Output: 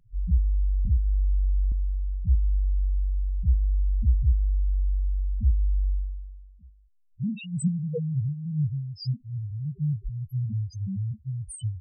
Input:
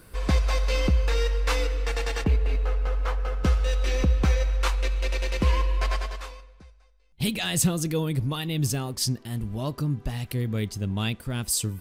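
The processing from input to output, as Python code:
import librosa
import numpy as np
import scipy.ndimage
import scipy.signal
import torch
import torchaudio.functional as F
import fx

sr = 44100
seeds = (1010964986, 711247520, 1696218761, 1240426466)

y = fx.block_float(x, sr, bits=3)
y = fx.spec_topn(y, sr, count=1)
y = fx.band_squash(y, sr, depth_pct=70, at=(0.85, 1.72))
y = F.gain(torch.from_numpy(y), 5.0).numpy()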